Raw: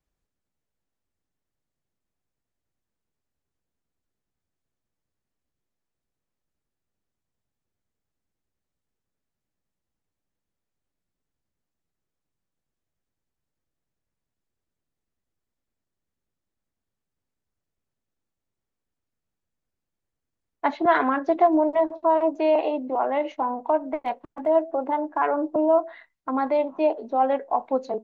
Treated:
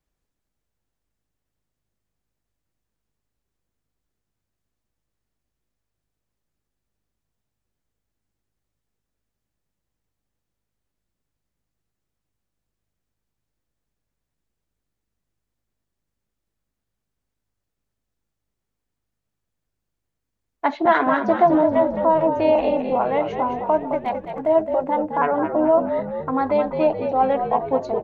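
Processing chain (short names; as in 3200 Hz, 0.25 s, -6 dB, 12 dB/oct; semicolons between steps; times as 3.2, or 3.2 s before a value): frequency-shifting echo 0.214 s, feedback 57%, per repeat -52 Hz, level -7.5 dB; gain +2.5 dB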